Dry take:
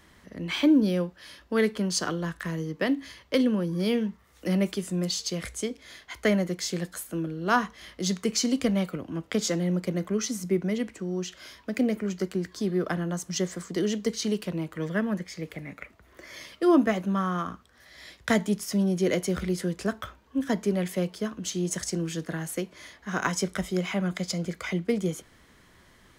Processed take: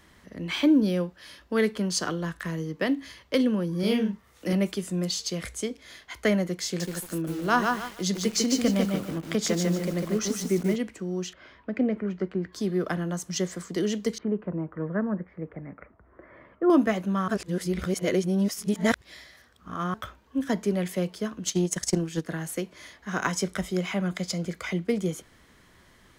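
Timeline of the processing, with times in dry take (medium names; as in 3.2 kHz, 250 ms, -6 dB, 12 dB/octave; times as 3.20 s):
3.79–4.53 s: doubling 41 ms -3 dB
6.65–10.76 s: bit-crushed delay 148 ms, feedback 35%, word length 7-bit, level -3 dB
11.33–12.53 s: low-pass 2 kHz
14.18–16.70 s: low-pass 1.5 kHz 24 dB/octave
17.28–19.94 s: reverse
21.44–22.25 s: transient shaper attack +10 dB, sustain -8 dB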